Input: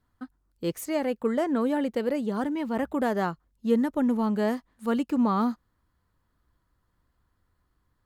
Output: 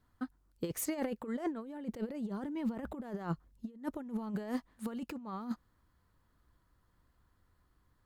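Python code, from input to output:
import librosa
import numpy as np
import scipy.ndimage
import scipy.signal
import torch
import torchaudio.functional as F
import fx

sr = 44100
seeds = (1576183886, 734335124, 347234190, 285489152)

y = fx.low_shelf(x, sr, hz=400.0, db=5.0, at=(1.6, 3.82), fade=0.02)
y = fx.over_compress(y, sr, threshold_db=-30.0, ratio=-0.5)
y = F.gain(torch.from_numpy(y), -6.5).numpy()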